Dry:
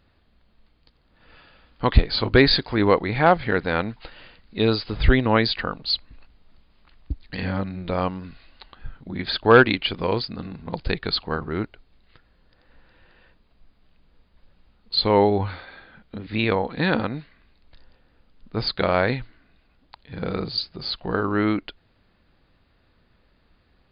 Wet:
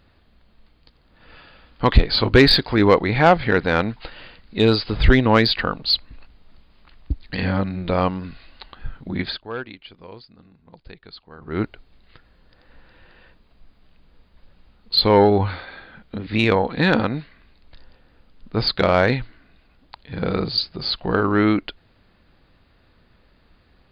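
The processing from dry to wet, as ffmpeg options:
-filter_complex "[0:a]asplit=3[a][b][c];[a]atrim=end=9.49,asetpts=PTS-STARTPTS,afade=t=out:st=9.21:d=0.28:c=qua:silence=0.0794328[d];[b]atrim=start=9.49:end=11.33,asetpts=PTS-STARTPTS,volume=-22dB[e];[c]atrim=start=11.33,asetpts=PTS-STARTPTS,afade=t=in:d=0.28:c=qua:silence=0.0794328[f];[d][e][f]concat=n=3:v=0:a=1,acontrast=60,volume=-1.5dB"

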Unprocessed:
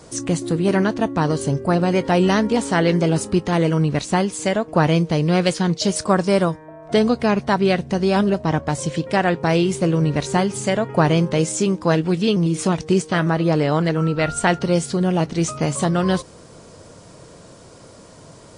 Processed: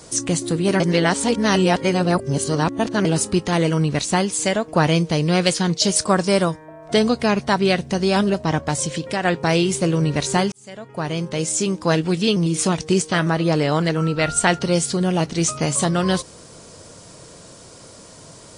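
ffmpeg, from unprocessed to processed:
-filter_complex "[0:a]asettb=1/sr,asplit=3[a][b][c];[a]atrim=end=8.774[d];[b]atrim=start=8.77:end=9.25,asetpts=PTS-STARTPTS,afade=t=in:d=0.004:c=qsin,afade=t=out:st=0.476:d=0.004:c=qsin,acompressor=threshold=-21dB:ratio=2:attack=3.2:release=140:knee=1:detection=peak[e];[c]atrim=start=9.246[f];[d][e]acrossfade=d=0.004:c1=hsin:c2=qsin[g];[g][f]acrossfade=d=0.004:c1=qsin:c2=hsin,asplit=4[h][i][j][k];[h]atrim=end=0.802[l];[i]atrim=start=0.798:end=3.052,asetpts=PTS-STARTPTS,areverse[m];[j]atrim=start=3.048:end=10.52,asetpts=PTS-STARTPTS,afade=t=out:st=7.468:d=0.004:c=hsin[n];[k]atrim=start=10.52,asetpts=PTS-STARTPTS,afade=t=in:d=1.44[o];[l][m]acrossfade=d=0.004:c1=hsin:c2=hsin[p];[n][o]concat=n=2:v=0:a=1[q];[p][q]acrossfade=d=0.004:c1=hsin:c2=hsin,highshelf=f=2.8k:g=8.5,volume=-1dB"

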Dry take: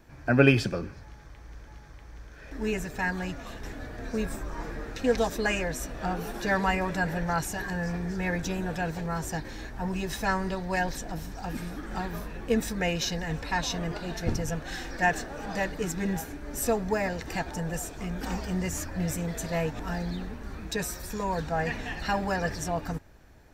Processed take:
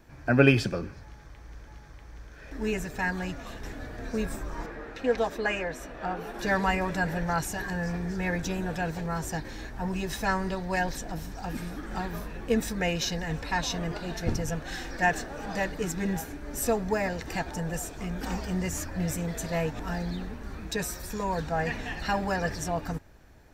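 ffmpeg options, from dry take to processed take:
-filter_complex "[0:a]asettb=1/sr,asplit=3[a][b][c];[a]atrim=end=4.664[d];[b]atrim=start=4.66:end=6.39,asetpts=PTS-STARTPTS,afade=t=in:d=0.004:c=qsin,afade=t=out:st=1.726:d=0.004:c=qsin,bass=f=250:g=-8,treble=f=4k:g=-11[e];[c]atrim=start=6.386[f];[d][e]acrossfade=d=0.004:c1=hsin:c2=qsin[g];[g][f]acrossfade=d=0.004:c1=qsin:c2=hsin"

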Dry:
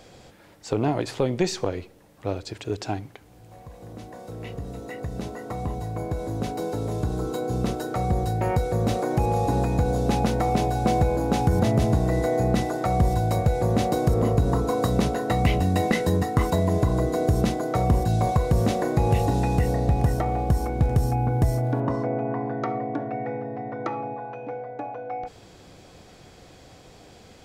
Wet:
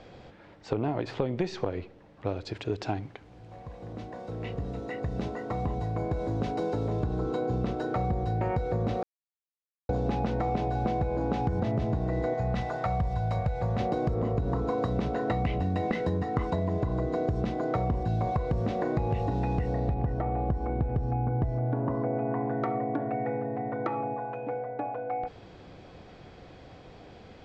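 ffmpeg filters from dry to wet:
-filter_complex "[0:a]asettb=1/sr,asplit=3[a][b][c];[a]atrim=end=2.264[d];[b]atrim=start=2.26:end=6.88,asetpts=PTS-STARTPTS,afade=t=in:d=0.004:c=qsin,afade=t=out:st=4.616:d=0.004:c=qsin,highshelf=f=5.1k:g=7.5[e];[c]atrim=start=6.876[f];[d][e]acrossfade=d=0.004:c1=hsin:c2=qsin[g];[g][f]acrossfade=d=0.004:c1=qsin:c2=hsin,asettb=1/sr,asplit=3[h][i][j];[h]atrim=end=12.344[k];[i]atrim=start=12.34:end=13.8,asetpts=PTS-STARTPTS,afade=t=in:d=0.004:c=qsin,afade=t=out:st=1.456:d=0.004:c=qsin,equalizer=f=320:w=1.5:g=-14.5[l];[j]atrim=start=13.796[m];[k][l]acrossfade=d=0.004:c1=hsin:c2=qsin[n];[n][m]acrossfade=d=0.004:c1=qsin:c2=hsin,asettb=1/sr,asplit=3[o][p][q];[o]atrim=end=19.944[r];[p]atrim=start=19.94:end=22.14,asetpts=PTS-STARTPTS,afade=t=in:d=0.004:c=qsin,afade=t=out:st=2.196:d=0.004:c=qsin,lowpass=f=1.8k:p=1[s];[q]atrim=start=22.136[t];[r][s]acrossfade=d=0.004:c1=hsin:c2=qsin[u];[u][t]acrossfade=d=0.004:c1=qsin:c2=hsin,asplit=3[v][w][x];[v]atrim=end=9.03,asetpts=PTS-STARTPTS,afade=t=out:st=9.026:d=0.004:c=hsin[y];[w]atrim=start=9.03:end=9.89,asetpts=PTS-STARTPTS,volume=0[z];[x]atrim=start=9.89,asetpts=PTS-STARTPTS,afade=t=in:d=0.004:c=hsin[aa];[y][z][aa]concat=n=3:v=0:a=1,lowpass=4.6k,aemphasis=mode=reproduction:type=50fm,acompressor=threshold=-25dB:ratio=6"

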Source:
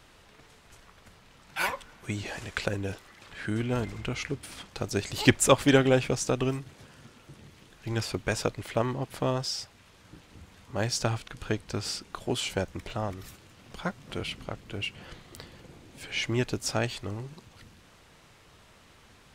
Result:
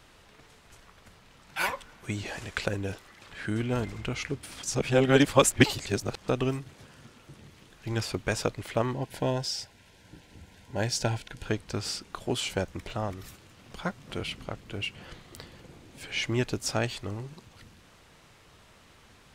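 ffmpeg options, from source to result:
-filter_complex "[0:a]asettb=1/sr,asplit=3[a][b][c];[a]atrim=end=8.944[d];[b]atrim=start=8.94:end=11.46,asetpts=PTS-STARTPTS,afade=t=in:d=0.004:c=qsin,afade=t=out:st=2.516:d=0.004:c=qsin,asuperstop=centerf=1200:order=12:qfactor=4.5[e];[c]atrim=start=11.456[f];[d][e]acrossfade=d=0.004:c1=hsin:c2=qsin[g];[g][f]acrossfade=d=0.004:c1=qsin:c2=hsin,asplit=3[h][i][j];[h]atrim=end=4.632[k];[i]atrim=start=4.628:end=6.282,asetpts=PTS-STARTPTS,areverse[l];[j]atrim=start=6.278[m];[k][l]acrossfade=d=0.004:c1=hsin:c2=hsin[n];[n][m]acrossfade=d=0.004:c1=hsin:c2=hsin"

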